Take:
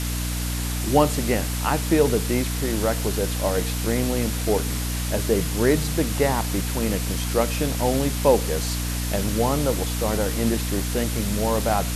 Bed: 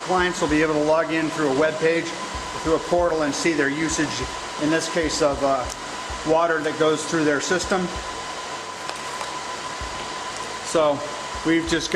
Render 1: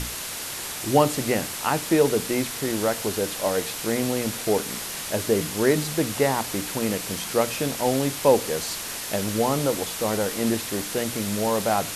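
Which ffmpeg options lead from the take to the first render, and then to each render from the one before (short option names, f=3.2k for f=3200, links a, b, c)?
-af "bandreject=f=60:t=h:w=6,bandreject=f=120:t=h:w=6,bandreject=f=180:t=h:w=6,bandreject=f=240:t=h:w=6,bandreject=f=300:t=h:w=6"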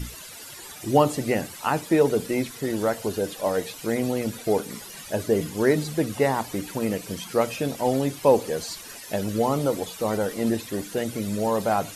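-af "afftdn=nr=14:nf=-33"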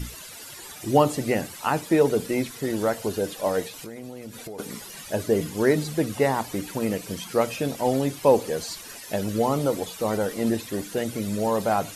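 -filter_complex "[0:a]asplit=3[a][b][c];[a]afade=t=out:st=3.67:d=0.02[d];[b]acompressor=threshold=-35dB:ratio=6:attack=3.2:release=140:knee=1:detection=peak,afade=t=in:st=3.67:d=0.02,afade=t=out:st=4.58:d=0.02[e];[c]afade=t=in:st=4.58:d=0.02[f];[d][e][f]amix=inputs=3:normalize=0"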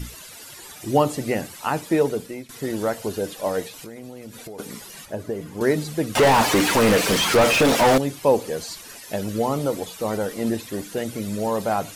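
-filter_complex "[0:a]asettb=1/sr,asplit=3[a][b][c];[a]atrim=end=5.054[d];[b]atrim=start=5.05:end=5.61,asetpts=PTS-STARTPTS,afade=t=in:d=0.004:c=qsin,afade=t=out:st=0.556:d=0.004:c=qsin,acrossover=split=640|1900[e][f][g];[e]acompressor=threshold=-28dB:ratio=4[h];[f]acompressor=threshold=-37dB:ratio=4[i];[g]acompressor=threshold=-52dB:ratio=4[j];[h][i][j]amix=inputs=3:normalize=0[k];[c]atrim=start=5.606[l];[d][k]acrossfade=d=0.004:c1=hsin:c2=qsin[m];[m][l]acrossfade=d=0.004:c1=qsin:c2=hsin,asettb=1/sr,asplit=3[n][o][p];[n]atrim=end=6.154[q];[o]atrim=start=6.15:end=7.98,asetpts=PTS-STARTPTS,afade=t=in:d=0.004:c=qsin,afade=t=out:st=1.826:d=0.004:c=qsin,asplit=2[r][s];[s]highpass=f=720:p=1,volume=35dB,asoftclip=type=tanh:threshold=-8dB[t];[r][t]amix=inputs=2:normalize=0,lowpass=f=2.7k:p=1,volume=-6dB[u];[p]atrim=start=7.976[v];[q][u]acrossfade=d=0.004:c1=hsin:c2=qsin[w];[w][v]acrossfade=d=0.004:c1=qsin:c2=hsin,asplit=2[x][y];[x]atrim=end=2.49,asetpts=PTS-STARTPTS,afade=t=out:st=1.98:d=0.51:silence=0.133352[z];[y]atrim=start=2.49,asetpts=PTS-STARTPTS,afade=t=in:d=0.004:c=hsin:silence=0.133352[aa];[z][aa]concat=n=2:v=0:a=1"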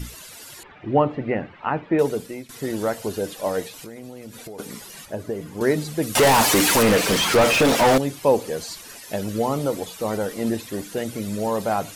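-filter_complex "[0:a]asettb=1/sr,asplit=3[a][b][c];[a]atrim=end=0.634[d];[b]atrim=start=0.63:end=1.99,asetpts=PTS-STARTPTS,afade=t=in:d=0.004:c=qsin,afade=t=out:st=1.356:d=0.004:c=qsin,lowpass=f=2.5k:w=0.5412,lowpass=f=2.5k:w=1.3066[e];[c]atrim=start=1.986[f];[d][e]acrossfade=d=0.004:c1=hsin:c2=qsin[g];[g][f]acrossfade=d=0.004:c1=qsin:c2=hsin,asettb=1/sr,asplit=3[h][i][j];[h]atrim=end=6.024[k];[i]atrim=start=6.02:end=6.83,asetpts=PTS-STARTPTS,afade=t=in:d=0.004:c=qsin,afade=t=out:st=0.806:d=0.004:c=qsin,aemphasis=mode=production:type=cd[l];[j]atrim=start=6.826[m];[k][l]acrossfade=d=0.004:c1=hsin:c2=qsin[n];[n][m]acrossfade=d=0.004:c1=qsin:c2=hsin"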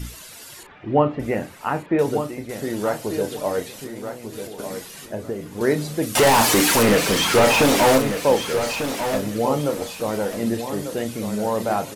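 -filter_complex "[0:a]asplit=2[a][b];[b]adelay=34,volume=-10dB[c];[a][c]amix=inputs=2:normalize=0,asplit=2[d][e];[e]aecho=0:1:1195|2390|3585:0.355|0.0816|0.0188[f];[d][f]amix=inputs=2:normalize=0"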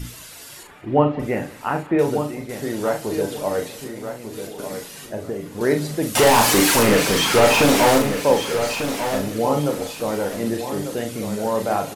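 -filter_complex "[0:a]asplit=2[a][b];[b]adelay=41,volume=-7dB[c];[a][c]amix=inputs=2:normalize=0,aecho=1:1:183|366:0.0891|0.0294"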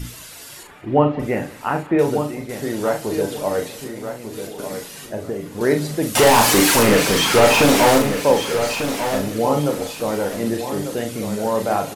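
-af "volume=1.5dB,alimiter=limit=-2dB:level=0:latency=1"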